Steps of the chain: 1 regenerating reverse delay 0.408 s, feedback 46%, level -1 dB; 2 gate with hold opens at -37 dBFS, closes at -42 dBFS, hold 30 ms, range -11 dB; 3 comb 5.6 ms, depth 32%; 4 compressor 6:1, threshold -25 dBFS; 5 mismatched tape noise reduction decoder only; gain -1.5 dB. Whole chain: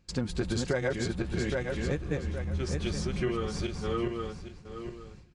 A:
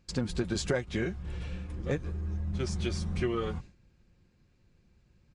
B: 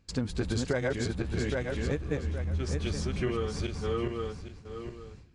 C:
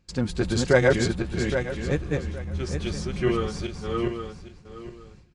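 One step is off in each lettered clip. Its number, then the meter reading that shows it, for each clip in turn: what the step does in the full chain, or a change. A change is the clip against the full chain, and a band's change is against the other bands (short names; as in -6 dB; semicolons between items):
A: 1, crest factor change +2.0 dB; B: 3, 125 Hz band +1.5 dB; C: 4, mean gain reduction 3.0 dB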